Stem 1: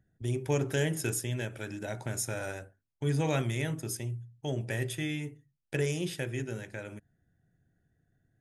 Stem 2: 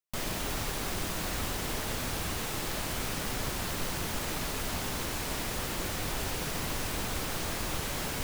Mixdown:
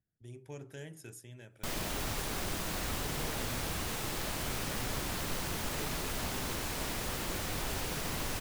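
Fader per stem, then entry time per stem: -17.0, -2.5 dB; 0.00, 1.50 s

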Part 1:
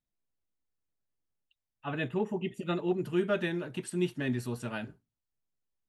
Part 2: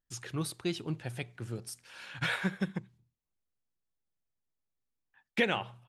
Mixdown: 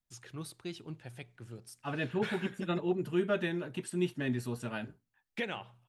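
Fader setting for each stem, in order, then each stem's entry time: -1.5, -8.0 dB; 0.00, 0.00 s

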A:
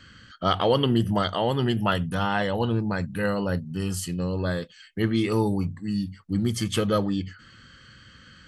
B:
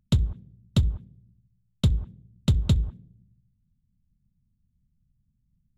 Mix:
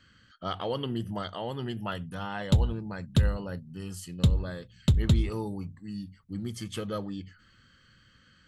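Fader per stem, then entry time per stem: -10.5, -1.0 dB; 0.00, 2.40 s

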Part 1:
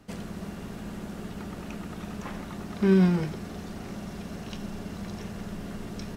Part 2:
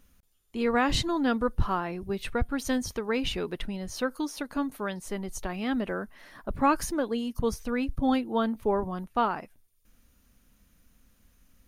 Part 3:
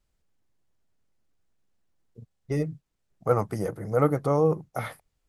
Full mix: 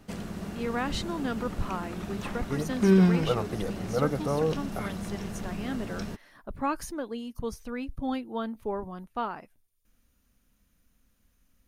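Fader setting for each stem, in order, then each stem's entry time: +0.5, -6.0, -5.0 dB; 0.00, 0.00, 0.00 s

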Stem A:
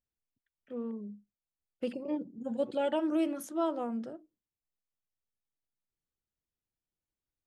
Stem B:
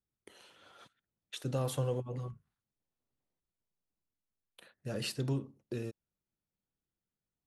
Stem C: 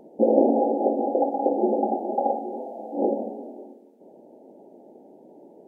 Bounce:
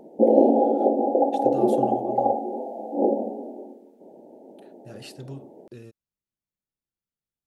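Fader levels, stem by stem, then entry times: off, -5.0 dB, +2.0 dB; off, 0.00 s, 0.00 s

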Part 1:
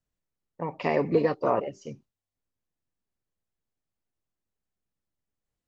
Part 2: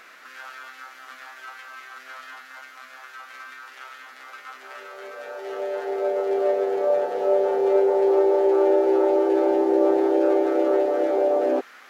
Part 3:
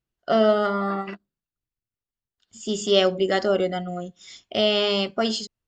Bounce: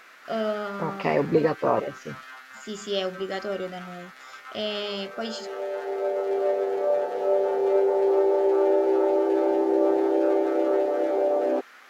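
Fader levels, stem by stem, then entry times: +2.0, -2.5, -9.0 dB; 0.20, 0.00, 0.00 s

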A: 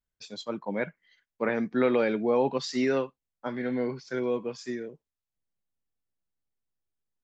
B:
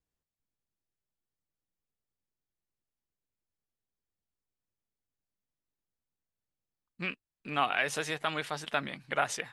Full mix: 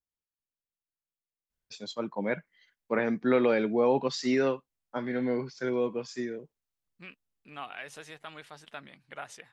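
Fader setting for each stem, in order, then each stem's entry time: 0.0, -12.0 dB; 1.50, 0.00 s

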